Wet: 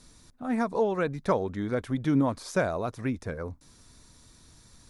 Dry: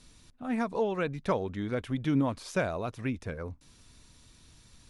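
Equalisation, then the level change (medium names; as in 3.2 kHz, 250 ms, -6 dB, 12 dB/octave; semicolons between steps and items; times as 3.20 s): bass shelf 180 Hz -3.5 dB; peaking EQ 2.8 kHz -9 dB 0.7 oct; +4.0 dB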